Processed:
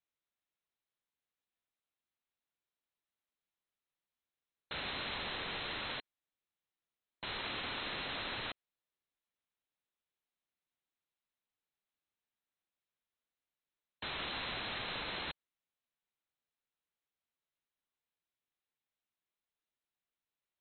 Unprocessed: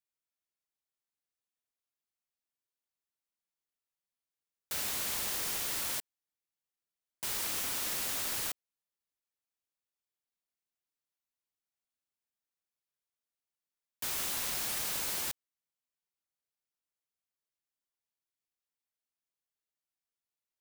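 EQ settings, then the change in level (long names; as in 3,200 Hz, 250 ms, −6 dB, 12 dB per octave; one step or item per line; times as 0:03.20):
linear-phase brick-wall low-pass 4,200 Hz
+1.5 dB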